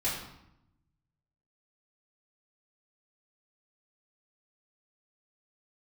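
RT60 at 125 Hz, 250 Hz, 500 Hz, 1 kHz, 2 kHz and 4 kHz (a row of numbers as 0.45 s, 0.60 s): 1.5 s, 1.1 s, 0.80 s, 0.80 s, 0.70 s, 0.65 s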